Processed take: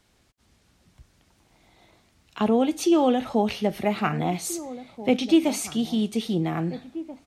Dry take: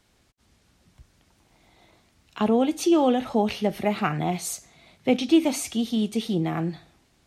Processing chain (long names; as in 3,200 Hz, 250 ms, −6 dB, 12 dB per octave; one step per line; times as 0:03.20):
slap from a distant wall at 280 metres, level −15 dB